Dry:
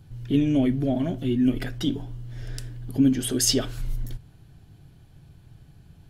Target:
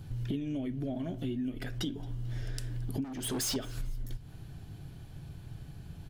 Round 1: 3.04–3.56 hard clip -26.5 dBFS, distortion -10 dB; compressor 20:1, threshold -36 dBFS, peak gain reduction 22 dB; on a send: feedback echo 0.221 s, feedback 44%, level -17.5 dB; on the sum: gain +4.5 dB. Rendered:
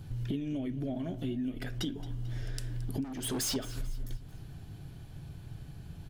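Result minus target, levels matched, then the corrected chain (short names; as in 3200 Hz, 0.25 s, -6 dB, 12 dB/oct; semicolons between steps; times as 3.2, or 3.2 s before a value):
echo-to-direct +7.5 dB
3.04–3.56 hard clip -26.5 dBFS, distortion -10 dB; compressor 20:1, threshold -36 dBFS, peak gain reduction 22 dB; on a send: feedback echo 0.221 s, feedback 44%, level -25 dB; on the sum: gain +4.5 dB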